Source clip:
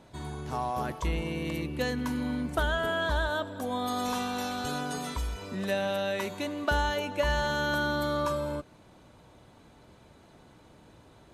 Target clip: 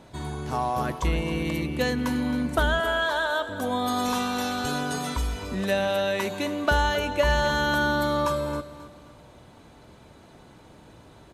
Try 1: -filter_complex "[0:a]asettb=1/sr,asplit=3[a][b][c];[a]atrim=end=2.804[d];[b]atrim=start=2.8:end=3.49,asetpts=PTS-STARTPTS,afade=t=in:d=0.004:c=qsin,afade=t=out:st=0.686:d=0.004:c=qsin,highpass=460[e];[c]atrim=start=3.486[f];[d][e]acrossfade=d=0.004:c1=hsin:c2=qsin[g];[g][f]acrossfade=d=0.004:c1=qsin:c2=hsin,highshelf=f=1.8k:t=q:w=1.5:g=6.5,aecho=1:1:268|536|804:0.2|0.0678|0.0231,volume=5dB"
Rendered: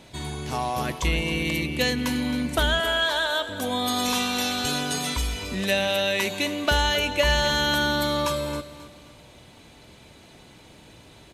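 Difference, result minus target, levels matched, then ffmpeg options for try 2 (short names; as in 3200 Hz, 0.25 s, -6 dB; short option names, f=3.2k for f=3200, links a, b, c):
4000 Hz band +6.0 dB
-filter_complex "[0:a]asettb=1/sr,asplit=3[a][b][c];[a]atrim=end=2.804[d];[b]atrim=start=2.8:end=3.49,asetpts=PTS-STARTPTS,afade=t=in:d=0.004:c=qsin,afade=t=out:st=0.686:d=0.004:c=qsin,highpass=460[e];[c]atrim=start=3.486[f];[d][e]acrossfade=d=0.004:c1=hsin:c2=qsin[g];[g][f]acrossfade=d=0.004:c1=qsin:c2=hsin,aecho=1:1:268|536|804:0.2|0.0678|0.0231,volume=5dB"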